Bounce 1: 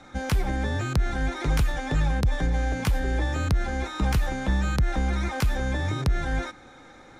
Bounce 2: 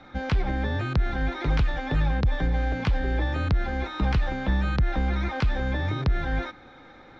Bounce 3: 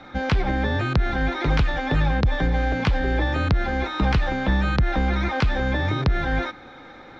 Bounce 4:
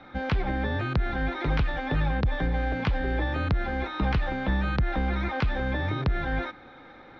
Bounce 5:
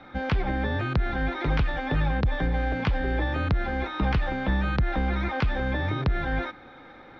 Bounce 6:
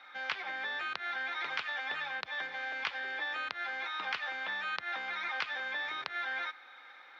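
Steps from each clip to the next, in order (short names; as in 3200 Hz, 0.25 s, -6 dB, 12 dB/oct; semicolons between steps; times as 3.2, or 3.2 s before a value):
LPF 4400 Hz 24 dB/oct
low shelf 120 Hz -5 dB; gain +6 dB
LPF 4100 Hz 12 dB/oct; gain -5 dB
notch 4000 Hz, Q 29; gain +1 dB
HPF 1400 Hz 12 dB/oct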